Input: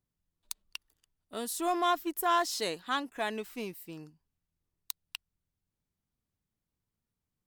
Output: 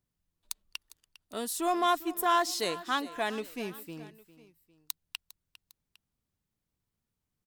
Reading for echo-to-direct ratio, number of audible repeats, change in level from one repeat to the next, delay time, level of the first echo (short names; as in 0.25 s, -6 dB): -16.0 dB, 2, -6.0 dB, 0.403 s, -17.0 dB